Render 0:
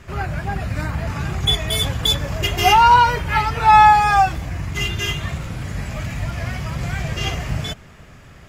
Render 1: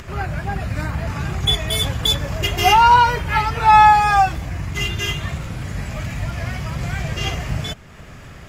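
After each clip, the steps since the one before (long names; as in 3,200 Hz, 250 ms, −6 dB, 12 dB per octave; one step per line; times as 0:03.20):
upward compression, threshold −31 dBFS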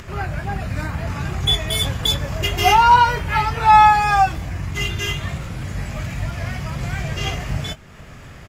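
double-tracking delay 22 ms −11 dB
level −1 dB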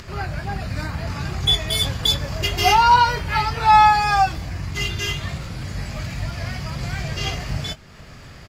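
parametric band 4,600 Hz +9.5 dB 0.48 octaves
level −2 dB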